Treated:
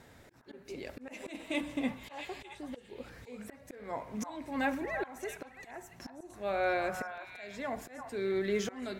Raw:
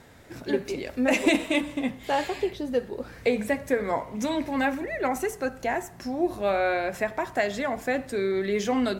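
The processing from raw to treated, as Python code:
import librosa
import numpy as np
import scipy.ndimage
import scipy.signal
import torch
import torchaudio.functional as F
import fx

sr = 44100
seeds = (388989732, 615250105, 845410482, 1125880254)

y = fx.auto_swell(x, sr, attack_ms=474.0)
y = fx.echo_stepped(y, sr, ms=336, hz=1100.0, octaves=1.4, feedback_pct=70, wet_db=-4)
y = y * librosa.db_to_amplitude(-5.0)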